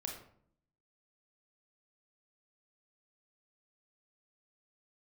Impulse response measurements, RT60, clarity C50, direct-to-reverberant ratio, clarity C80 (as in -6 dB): 0.60 s, 5.0 dB, 0.5 dB, 8.5 dB